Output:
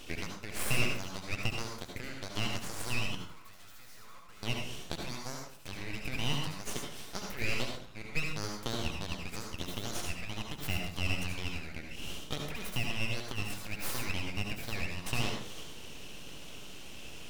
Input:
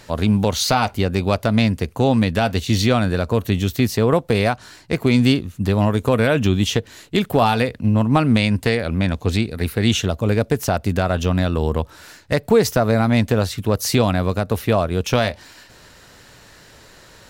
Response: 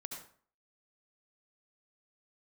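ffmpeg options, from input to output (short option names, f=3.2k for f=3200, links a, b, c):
-filter_complex "[0:a]acompressor=threshold=-24dB:ratio=12,highpass=f=1.3k:t=q:w=6.7,asettb=1/sr,asplit=3[a][b][c];[a]atrim=end=3.154[d];[b]atrim=start=3.15:end=4.43,asetpts=PTS-STARTPTS,afade=t=in:d=0.004:c=qsin,afade=t=out:st=1.276:d=0.004:c=qsin,aeval=exprs='(tanh(178*val(0)+0.5)-tanh(0.5))/178':c=same[e];[c]atrim=start=4.426[f];[d][e]acrossfade=d=0.004:c1=hsin:c2=qsin[g];[g][f]acrossfade=d=0.004:c1=qsin:c2=hsin,aeval=exprs='abs(val(0))':c=same[h];[1:a]atrim=start_sample=2205[i];[h][i]afir=irnorm=-1:irlink=0"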